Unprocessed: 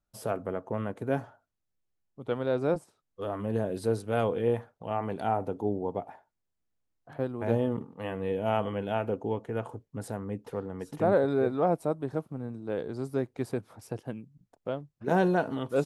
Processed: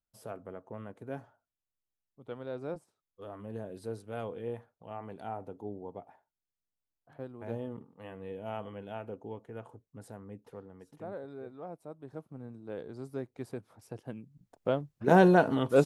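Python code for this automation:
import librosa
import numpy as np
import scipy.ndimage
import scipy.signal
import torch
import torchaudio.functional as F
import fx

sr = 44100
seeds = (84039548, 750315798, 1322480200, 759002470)

y = fx.gain(x, sr, db=fx.line((10.48, -11.0), (11.15, -18.0), (11.79, -18.0), (12.36, -8.0), (13.86, -8.0), (14.68, 4.0)))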